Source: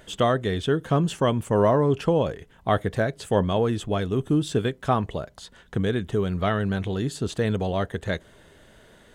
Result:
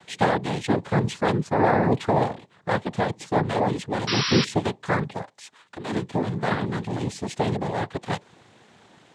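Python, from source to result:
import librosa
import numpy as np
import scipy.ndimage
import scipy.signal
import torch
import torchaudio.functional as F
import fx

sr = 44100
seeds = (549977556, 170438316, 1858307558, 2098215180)

y = fx.highpass(x, sr, hz=700.0, slope=6, at=(5.21, 5.91))
y = fx.noise_vocoder(y, sr, seeds[0], bands=6)
y = fx.spec_paint(y, sr, seeds[1], shape='noise', start_s=4.07, length_s=0.38, low_hz=940.0, high_hz=5800.0, level_db=-26.0)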